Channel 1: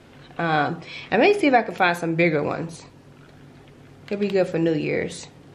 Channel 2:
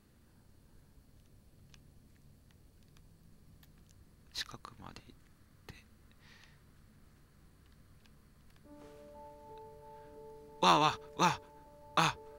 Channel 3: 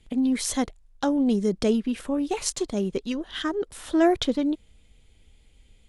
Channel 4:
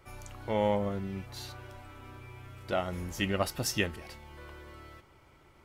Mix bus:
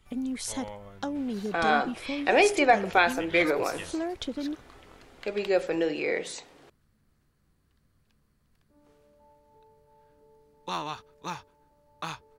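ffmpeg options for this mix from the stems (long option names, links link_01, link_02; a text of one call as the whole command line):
ffmpeg -i stem1.wav -i stem2.wav -i stem3.wav -i stem4.wav -filter_complex "[0:a]highpass=410,adelay=1150,volume=-2dB[link_01];[1:a]adelay=50,volume=-7dB[link_02];[2:a]acompressor=threshold=-24dB:ratio=6,volume=-5dB[link_03];[3:a]equalizer=frequency=250:width_type=o:width=2.3:gain=-9.5,volume=-9dB[link_04];[link_01][link_02][link_03][link_04]amix=inputs=4:normalize=0" out.wav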